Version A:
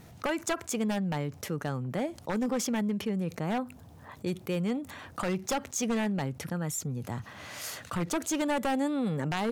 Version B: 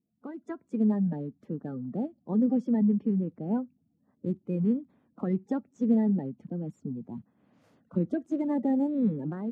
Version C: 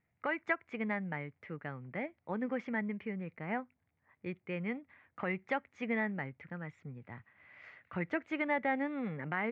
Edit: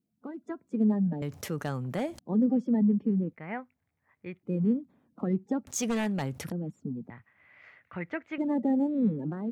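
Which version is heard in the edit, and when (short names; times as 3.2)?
B
1.22–2.19 from A
3.33–4.43 from C
5.67–6.52 from A
7.1–8.38 from C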